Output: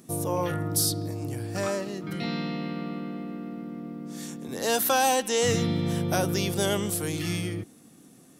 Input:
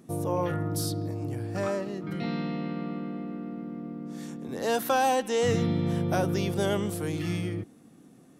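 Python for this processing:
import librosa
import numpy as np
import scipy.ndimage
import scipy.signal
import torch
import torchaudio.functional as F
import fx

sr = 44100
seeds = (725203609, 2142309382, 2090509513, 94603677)

y = fx.high_shelf(x, sr, hz=3100.0, db=11.5)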